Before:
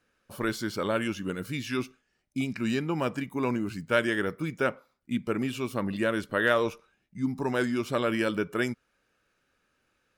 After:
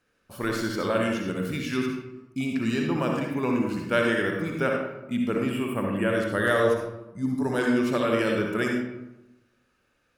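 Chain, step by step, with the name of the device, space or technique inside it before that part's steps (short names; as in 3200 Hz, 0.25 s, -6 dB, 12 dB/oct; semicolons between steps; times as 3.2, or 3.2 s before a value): 5.5–6.1 spectral gain 3400–7300 Hz -22 dB; bathroom (reverb RT60 0.95 s, pre-delay 54 ms, DRR 0 dB); 6.32–7.59 thirty-one-band EQ 100 Hz +6 dB, 1000 Hz -3 dB, 2500 Hz -11 dB, 10000 Hz +10 dB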